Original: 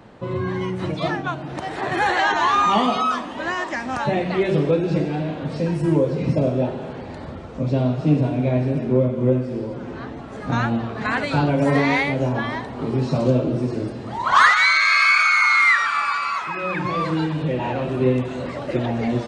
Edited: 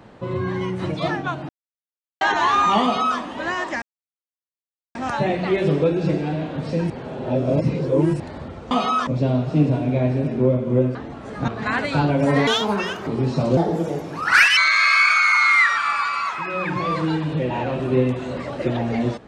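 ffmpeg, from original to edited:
-filter_complex "[0:a]asplit=14[s0][s1][s2][s3][s4][s5][s6][s7][s8][s9][s10][s11][s12][s13];[s0]atrim=end=1.49,asetpts=PTS-STARTPTS,afade=t=out:st=1.486:d=0.004:c=hsin[s14];[s1]atrim=start=1.49:end=2.21,asetpts=PTS-STARTPTS,volume=0[s15];[s2]atrim=start=2.21:end=3.82,asetpts=PTS-STARTPTS,afade=t=in:d=0.004:c=hsin,afade=t=out:st=1.606:d=0.004:c=hsin,apad=pad_dur=1.13[s16];[s3]atrim=start=3.82:end=5.772,asetpts=PTS-STARTPTS,afade=t=in:d=0.004:c=hsin[s17];[s4]atrim=start=5.768:end=7.072,asetpts=PTS-STARTPTS,areverse[s18];[s5]atrim=start=7.068:end=7.582[s19];[s6]atrim=start=2.828:end=3.192[s20];[s7]atrim=start=7.578:end=9.462[s21];[s8]atrim=start=10.018:end=10.552[s22];[s9]atrim=start=10.868:end=11.864[s23];[s10]atrim=start=11.86:end=12.82,asetpts=PTS-STARTPTS,asetrate=70560,aresample=44100[s24];[s11]atrim=start=12.816:end=13.324[s25];[s12]atrim=start=13.32:end=14.66,asetpts=PTS-STARTPTS,asetrate=59094,aresample=44100[s26];[s13]atrim=start=14.656[s27];[s14][s15][s16][s17]concat=n=4:v=0:a=1[s28];[s28][s18]acrossfade=d=0.004:c1=hsin:c2=hsin[s29];[s29][s19]acrossfade=d=0.004:c1=hsin:c2=hsin[s30];[s30][s20]acrossfade=d=0.004:c1=hsin:c2=hsin[s31];[s31][s21]acrossfade=d=0.004:c1=hsin:c2=hsin[s32];[s32][s22]acrossfade=d=0.004:c1=hsin:c2=hsin[s33];[s33][s23]acrossfade=d=0.004:c1=hsin:c2=hsin[s34];[s34][s24]acrossfade=d=0.004:c1=hsin:c2=hsin[s35];[s35][s25]acrossfade=d=0.004:c1=hsin:c2=hsin[s36];[s36][s26]acrossfade=d=0.004:c1=hsin:c2=hsin[s37];[s37][s27]acrossfade=d=0.004:c1=hsin:c2=hsin"

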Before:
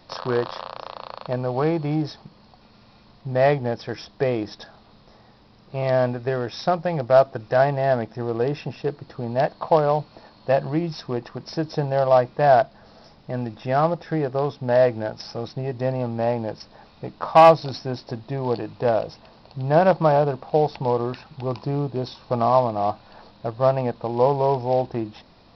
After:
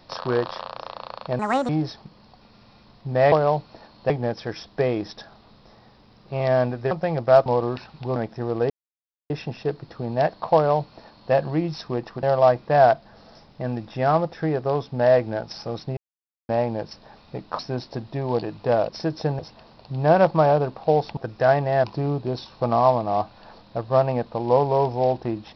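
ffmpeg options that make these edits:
-filter_complex "[0:a]asplit=17[s0][s1][s2][s3][s4][s5][s6][s7][s8][s9][s10][s11][s12][s13][s14][s15][s16];[s0]atrim=end=1.394[s17];[s1]atrim=start=1.39:end=1.89,asetpts=PTS-STARTPTS,asetrate=73647,aresample=44100[s18];[s2]atrim=start=1.886:end=3.522[s19];[s3]atrim=start=9.738:end=10.522[s20];[s4]atrim=start=3.518:end=6.332[s21];[s5]atrim=start=6.728:end=7.282[s22];[s6]atrim=start=20.828:end=21.532[s23];[s7]atrim=start=7.948:end=8.49,asetpts=PTS-STARTPTS,afade=t=out:st=0.538:d=0.004:c=hsin,apad=pad_dur=0.6[s24];[s8]atrim=start=8.49:end=11.422,asetpts=PTS-STARTPTS,afade=t=in:d=0.004:c=hsin[s25];[s9]atrim=start=11.918:end=15.66,asetpts=PTS-STARTPTS,afade=t=out:st=3.738:d=0.004:c=hsin[s26];[s10]atrim=start=15.66:end=16.18,asetpts=PTS-STARTPTS,volume=0[s27];[s11]atrim=start=16.18:end=17.282,asetpts=PTS-STARTPTS,afade=t=in:d=0.004:c=hsin[s28];[s12]atrim=start=17.748:end=19.052[s29];[s13]atrim=start=11.418:end=11.922[s30];[s14]atrim=start=19.048:end=20.832[s31];[s15]atrim=start=7.278:end=7.952[s32];[s16]atrim=start=21.528[s33];[s17][s18]acrossfade=d=0.004:c1=hsin:c2=hsin[s34];[s34][s19]acrossfade=d=0.004:c1=hsin:c2=hsin[s35];[s35][s20]acrossfade=d=0.004:c1=hsin:c2=hsin[s36];[s36][s21]acrossfade=d=0.004:c1=hsin:c2=hsin[s37];[s37][s22]acrossfade=d=0.004:c1=hsin:c2=hsin[s38];[s38][s23]acrossfade=d=0.004:c1=hsin:c2=hsin[s39];[s24][s25]concat=n=2:v=0:a=1[s40];[s39][s40]acrossfade=d=0.004:c1=hsin:c2=hsin[s41];[s26][s27][s28]concat=n=3:v=0:a=1[s42];[s41][s42]acrossfade=d=0.004:c1=hsin:c2=hsin[s43];[s43][s29]acrossfade=d=0.004:c1=hsin:c2=hsin[s44];[s44][s30]acrossfade=d=0.004:c1=hsin:c2=hsin[s45];[s45][s31]acrossfade=d=0.004:c1=hsin:c2=hsin[s46];[s46][s32]acrossfade=d=0.004:c1=hsin:c2=hsin[s47];[s47][s33]acrossfade=d=0.004:c1=hsin:c2=hsin"

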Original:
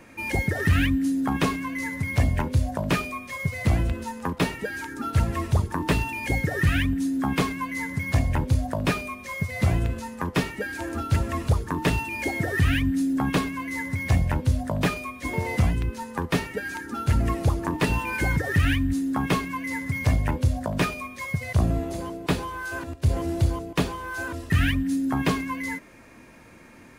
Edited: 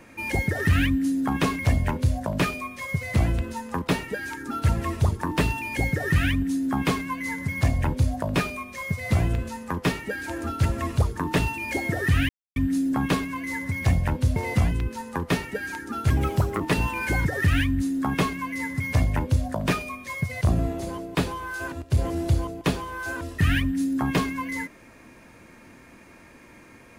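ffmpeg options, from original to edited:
-filter_complex "[0:a]asplit=6[s0][s1][s2][s3][s4][s5];[s0]atrim=end=1.592[s6];[s1]atrim=start=2.098:end=12.8,asetpts=PTS-STARTPTS,afade=t=out:st=10.698:d=0.004:c=hsin,apad=pad_dur=0.27[s7];[s2]atrim=start=12.8:end=14.602,asetpts=PTS-STARTPTS,afade=t=in:d=0.004:c=hsin[s8];[s3]atrim=start=15.378:end=17.124[s9];[s4]atrim=start=17.12:end=17.72,asetpts=PTS-STARTPTS,asetrate=52479,aresample=44100,atrim=end_sample=22235,asetpts=PTS-STARTPTS[s10];[s5]atrim=start=17.716[s11];[s7][s8]concat=n=2:v=0:a=1[s12];[s6][s12]acrossfade=d=0.004:c1=hsin:c2=hsin[s13];[s13][s9]acrossfade=d=0.004:c1=hsin:c2=hsin[s14];[s14][s10]acrossfade=d=0.004:c1=hsin:c2=hsin[s15];[s15][s11]acrossfade=d=0.004:c1=hsin:c2=hsin"

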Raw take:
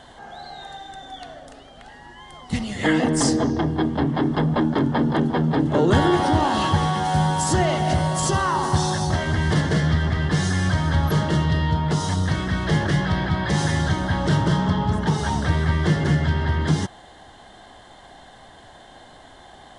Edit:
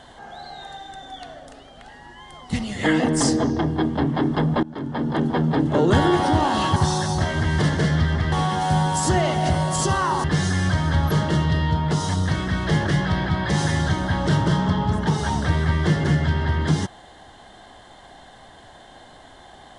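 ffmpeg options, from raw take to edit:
-filter_complex "[0:a]asplit=5[s0][s1][s2][s3][s4];[s0]atrim=end=4.63,asetpts=PTS-STARTPTS,afade=t=out:st=4.626:d=0.004:c=hsin:silence=0.0944061[s5];[s1]atrim=start=4.63:end=6.762,asetpts=PTS-STARTPTS,afade=t=in:d=0.68:silence=0.0944061[s6];[s2]atrim=start=8.678:end=10.242[s7];[s3]atrim=start=6.758:end=8.682[s8];[s4]atrim=start=10.238[s9];[s5][s6]concat=n=2:v=0:a=1[s10];[s10][s7]acrossfade=d=0.004:c1=hsin:c2=hsin[s11];[s11][s8]acrossfade=d=0.004:c1=hsin:c2=hsin[s12];[s12][s9]acrossfade=d=0.004:c1=hsin:c2=hsin"

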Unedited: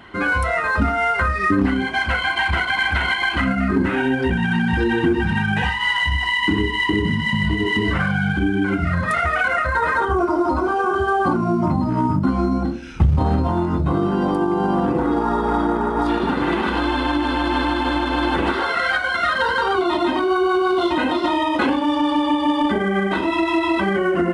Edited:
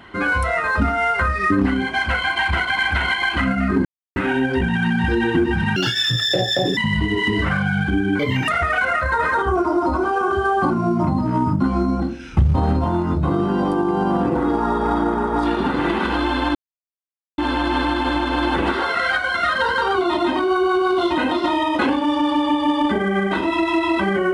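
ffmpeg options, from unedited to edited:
-filter_complex "[0:a]asplit=7[s0][s1][s2][s3][s4][s5][s6];[s0]atrim=end=3.85,asetpts=PTS-STARTPTS,afade=t=out:st=3.846:d=0.004:c=hsin,apad=pad_dur=0.31[s7];[s1]atrim=start=3.85:end=5.454,asetpts=PTS-STARTPTS,afade=t=in:d=0.004:c=hsin[s8];[s2]atrim=start=5.45:end=7.26,asetpts=PTS-STARTPTS,asetrate=78939,aresample=44100[s9];[s3]atrim=start=7.256:end=8.684[s10];[s4]atrim=start=8.68:end=9.11,asetpts=PTS-STARTPTS,asetrate=65709,aresample=44100[s11];[s5]atrim=start=9.106:end=17.18,asetpts=PTS-STARTPTS,afade=t=out:st=8.07:d=0.004:c=hsin,apad=pad_dur=0.83[s12];[s6]atrim=start=17.18,asetpts=PTS-STARTPTS,afade=t=in:d=0.004:c=hsin[s13];[s7][s8]concat=n=2:v=0:a=1[s14];[s14][s9]acrossfade=d=0.004:c1=hsin:c2=hsin[s15];[s15][s10]acrossfade=d=0.004:c1=hsin:c2=hsin[s16];[s16][s11]acrossfade=d=0.004:c1=hsin:c2=hsin[s17];[s12][s13]concat=n=2:v=0:a=1[s18];[s17][s18]acrossfade=d=0.004:c1=hsin:c2=hsin"

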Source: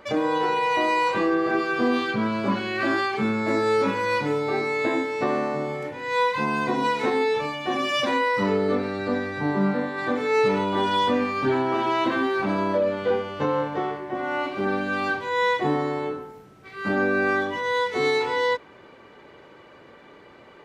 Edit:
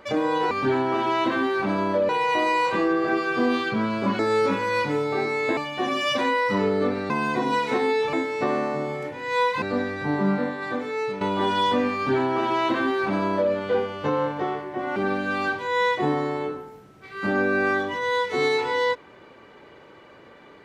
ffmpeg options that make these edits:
-filter_complex "[0:a]asplit=10[s0][s1][s2][s3][s4][s5][s6][s7][s8][s9];[s0]atrim=end=0.512[s10];[s1]atrim=start=11.308:end=12.892[s11];[s2]atrim=start=0.508:end=2.612[s12];[s3]atrim=start=3.548:end=4.932[s13];[s4]atrim=start=7.448:end=8.982[s14];[s5]atrim=start=6.418:end=7.452[s15];[s6]atrim=start=4.928:end=6.422[s16];[s7]atrim=start=8.978:end=10.57,asetpts=PTS-STARTPTS,afade=t=out:st=0.802:d=0.79:silence=0.266073[s17];[s8]atrim=start=10.57:end=14.322,asetpts=PTS-STARTPTS,afade=t=in:d=0.004:c=hsin:silence=0.266073[s18];[s9]atrim=start=14.578[s19];[s10][s11]acrossfade=d=0.004:c1=hsin:c2=hsin[s20];[s20][s12]acrossfade=d=0.004:c1=hsin:c2=hsin[s21];[s21][s13]acrossfade=d=0.004:c1=hsin:c2=hsin[s22];[s22][s14]acrossfade=d=0.004:c1=hsin:c2=hsin[s23];[s23][s15]acrossfade=d=0.004:c1=hsin:c2=hsin[s24];[s24][s16]acrossfade=d=0.004:c1=hsin:c2=hsin[s25];[s17][s18]concat=n=2:v=0:a=1[s26];[s25][s26]acrossfade=d=0.004:c1=hsin:c2=hsin[s27];[s27][s19]acrossfade=d=0.004:c1=hsin:c2=hsin"

